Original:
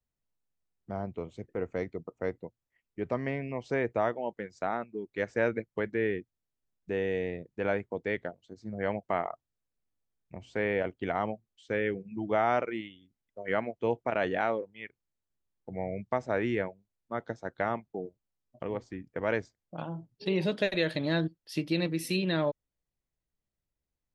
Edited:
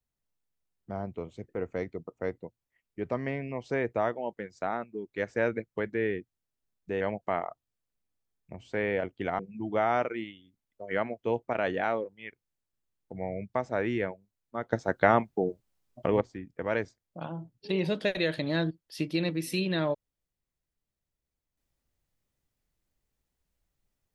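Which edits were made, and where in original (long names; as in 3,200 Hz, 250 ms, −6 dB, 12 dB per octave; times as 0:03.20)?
0:07.01–0:08.83: remove
0:11.21–0:11.96: remove
0:17.30–0:18.78: clip gain +9 dB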